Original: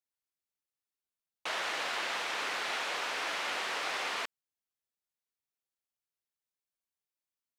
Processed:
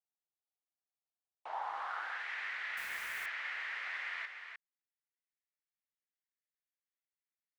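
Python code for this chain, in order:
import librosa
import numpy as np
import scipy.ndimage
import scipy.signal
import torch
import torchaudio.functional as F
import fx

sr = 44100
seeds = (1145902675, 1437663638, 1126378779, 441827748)

p1 = fx.graphic_eq_31(x, sr, hz=(800, 2500, 10000), db=(11, -4, 7), at=(1.53, 2.12))
p2 = p1 + fx.echo_single(p1, sr, ms=303, db=-7.0, dry=0)
p3 = fx.filter_sweep_bandpass(p2, sr, from_hz=740.0, to_hz=1900.0, start_s=1.38, end_s=2.32, q=3.9)
y = fx.quant_dither(p3, sr, seeds[0], bits=8, dither='none', at=(2.77, 3.26))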